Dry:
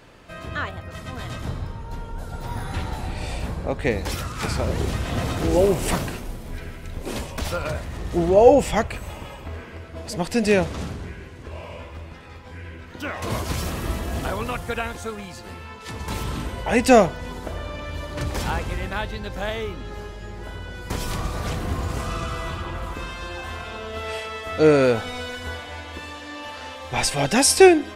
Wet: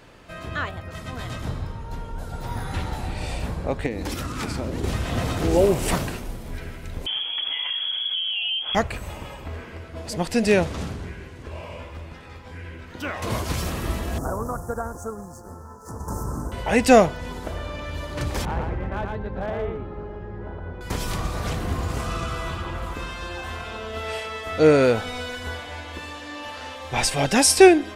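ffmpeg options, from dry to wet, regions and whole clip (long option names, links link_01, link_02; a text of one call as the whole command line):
ffmpeg -i in.wav -filter_complex "[0:a]asettb=1/sr,asplit=3[link_01][link_02][link_03];[link_01]atrim=end=3.864[link_04];[link_02]atrim=start=3.86:end=4.84,asetpts=PTS-STARTPTS,afade=type=in:duration=0.004:curve=qsin,afade=type=out:start_time=0.976:duration=0.004:curve=qsin,equalizer=frequency=280:width=2.2:gain=10,acompressor=threshold=-24dB:ratio=6:attack=3.2:release=140:knee=1:detection=peak[link_05];[link_03]atrim=start=4.836[link_06];[link_04][link_05]acrossfade=duration=0.004:curve1=hsin:curve2=qsin[link_07];[link_07][link_06]acrossfade=duration=0.004:curve1=qsin:curve2=hsin,asettb=1/sr,asplit=3[link_08][link_09][link_10];[link_08]atrim=end=7.064[link_11];[link_09]atrim=start=7.06:end=8.75,asetpts=PTS-STARTPTS,afade=type=in:duration=0.004:curve=qsin,afade=type=out:start_time=1.686:duration=0.004:curve=qsin,lowshelf=frequency=350:width_type=q:width=3:gain=6.5,acompressor=threshold=-23dB:ratio=10:attack=3.2:release=140:knee=1:detection=peak,lowpass=frequency=2900:width_type=q:width=0.5098,lowpass=frequency=2900:width_type=q:width=0.6013,lowpass=frequency=2900:width_type=q:width=0.9,lowpass=frequency=2900:width_type=q:width=2.563,afreqshift=-3400[link_12];[link_10]atrim=start=8.746[link_13];[link_11][link_12]acrossfade=duration=0.004:curve1=hsin:curve2=qsin[link_14];[link_14][link_13]acrossfade=duration=0.004:curve1=qsin:curve2=hsin,asettb=1/sr,asplit=3[link_15][link_16][link_17];[link_15]atrim=end=14.184[link_18];[link_16]atrim=start=14.18:end=16.52,asetpts=PTS-STARTPTS,afade=type=in:duration=0.004:curve=qsin,afade=type=out:start_time=2.336:duration=0.004:curve=qsin,aeval=exprs='sgn(val(0))*max(abs(val(0))-0.00335,0)':channel_layout=same,asuperstop=centerf=2900:order=8:qfactor=0.65[link_19];[link_17]atrim=start=16.516[link_20];[link_18][link_19]acrossfade=duration=0.004:curve1=hsin:curve2=qsin[link_21];[link_21][link_20]acrossfade=duration=0.004:curve1=qsin:curve2=hsin,asettb=1/sr,asplit=3[link_22][link_23][link_24];[link_22]atrim=end=18.454[link_25];[link_23]atrim=start=18.45:end=20.81,asetpts=PTS-STARTPTS,afade=type=in:duration=0.004:curve=qsin,afade=type=out:start_time=2.356:duration=0.004:curve=qsin,lowpass=1200,asoftclip=type=hard:threshold=-22.5dB,aecho=1:1:115:0.668,atrim=end_sample=104076[link_26];[link_24]atrim=start=20.806[link_27];[link_25][link_26]acrossfade=duration=0.004:curve1=hsin:curve2=qsin[link_28];[link_28][link_27]acrossfade=duration=0.004:curve1=qsin:curve2=hsin" out.wav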